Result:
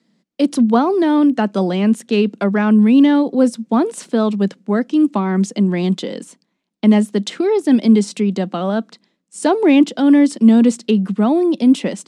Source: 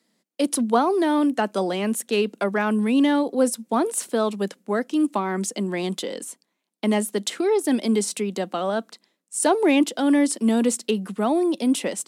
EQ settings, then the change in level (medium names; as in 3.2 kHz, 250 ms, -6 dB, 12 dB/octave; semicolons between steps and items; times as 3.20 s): low-pass 5.5 kHz 12 dB/octave; tone controls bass +14 dB, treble +1 dB; +2.5 dB